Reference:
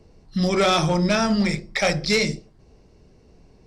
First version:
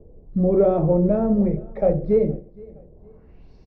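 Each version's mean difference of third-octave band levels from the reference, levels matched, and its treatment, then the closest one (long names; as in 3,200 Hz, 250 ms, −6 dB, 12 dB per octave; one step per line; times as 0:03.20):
8.5 dB: high-shelf EQ 3,200 Hz −7.5 dB
low-pass filter sweep 510 Hz → 4,900 Hz, 0:02.92–0:03.54
low-shelf EQ 73 Hz +10 dB
on a send: repeating echo 467 ms, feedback 37%, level −23.5 dB
on the sum: level −1 dB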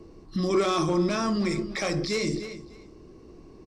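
5.0 dB: on a send: repeating echo 301 ms, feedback 19%, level −21.5 dB
on the sum: dynamic equaliser 7,500 Hz, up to +5 dB, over −39 dBFS, Q 1.2
brickwall limiter −23 dBFS, peak gain reduction 12.5 dB
hollow resonant body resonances 330/1,100 Hz, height 14 dB, ringing for 35 ms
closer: second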